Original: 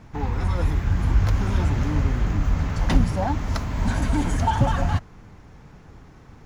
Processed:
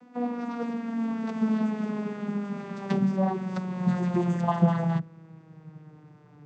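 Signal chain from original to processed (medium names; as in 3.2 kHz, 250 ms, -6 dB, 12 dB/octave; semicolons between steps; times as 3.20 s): vocoder on a note that slides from B3, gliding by -9 st; hum notches 50/100/150/200/250/300 Hz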